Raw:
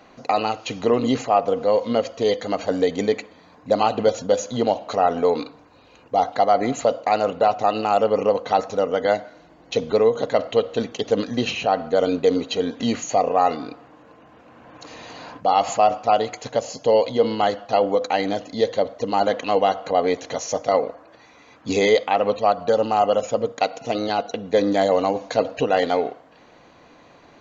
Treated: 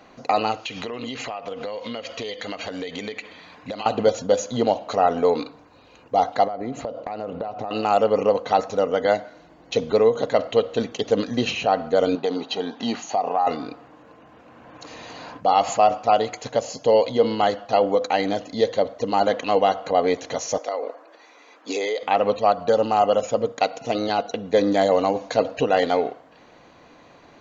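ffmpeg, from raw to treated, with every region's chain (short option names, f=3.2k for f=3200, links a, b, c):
-filter_complex "[0:a]asettb=1/sr,asplit=3[a][b][c];[a]atrim=end=0.654[d];[b]atrim=start=0.65:end=3.86,asetpts=PTS-STARTPTS,afade=t=in:d=0.004:c=qsin,afade=t=out:st=3.206:d=0.004:c=qsin,equalizer=f=2.7k:t=o:w=1.9:g=12.5,acompressor=threshold=-27dB:ratio=12:attack=3.2:release=140:knee=1:detection=peak[e];[c]atrim=start=3.856[f];[d][e]acrossfade=d=0.004:c1=hsin:c2=qsin[g];[g][f]acrossfade=d=0.004:c1=qsin:c2=hsin,asettb=1/sr,asplit=3[h][i][j];[h]atrim=end=6.474[k];[i]atrim=start=6.47:end=7.71,asetpts=PTS-STARTPTS,afade=t=in:d=0.004:c=qsin,afade=t=out:st=1.236:d=0.004:c=qsin,lowpass=5.1k,acompressor=threshold=-27dB:ratio=10:attack=3.2:release=140:knee=1:detection=peak,tiltshelf=f=900:g=4.5[l];[j]atrim=start=7.706[m];[k][l]acrossfade=d=0.004:c1=hsin:c2=qsin[n];[n][m]acrossfade=d=0.004:c1=qsin:c2=hsin,asettb=1/sr,asplit=3[o][p][q];[o]atrim=end=12.154[r];[p]atrim=start=12.15:end=13.47,asetpts=PTS-STARTPTS,afade=t=in:d=0.004:c=qsin,afade=t=out:st=1.316:d=0.004:c=qsin,highpass=210,equalizer=f=280:t=q:w=4:g=-4,equalizer=f=510:t=q:w=4:g=-9,equalizer=f=820:t=q:w=4:g=9,equalizer=f=2.2k:t=q:w=4:g=-5,lowpass=f=5.7k:w=0.5412,lowpass=f=5.7k:w=1.3066,acompressor=threshold=-17dB:ratio=6:attack=3.2:release=140:knee=1:detection=peak[s];[q]atrim=start=13.466[t];[r][s]acrossfade=d=0.004:c1=hsin:c2=qsin[u];[u][t]acrossfade=d=0.004:c1=qsin:c2=hsin,asettb=1/sr,asplit=3[v][w][x];[v]atrim=end=20.584[y];[w]atrim=start=20.58:end=22.03,asetpts=PTS-STARTPTS,afade=t=in:d=0.004:c=qsin,afade=t=out:st=1.446:d=0.004:c=qsin,highpass=f=310:w=0.5412,highpass=f=310:w=1.3066,acompressor=threshold=-22dB:ratio=6:attack=3.2:release=140:knee=1:detection=peak[z];[x]atrim=start=22.026[aa];[y][z]acrossfade=d=0.004:c1=hsin:c2=qsin[ab];[ab][aa]acrossfade=d=0.004:c1=qsin:c2=hsin"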